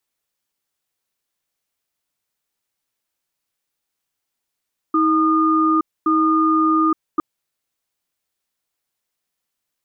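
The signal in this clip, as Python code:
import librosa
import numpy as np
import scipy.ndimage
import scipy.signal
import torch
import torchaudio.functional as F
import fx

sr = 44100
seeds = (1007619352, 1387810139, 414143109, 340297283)

y = fx.cadence(sr, length_s=2.26, low_hz=318.0, high_hz=1220.0, on_s=0.87, off_s=0.25, level_db=-16.0)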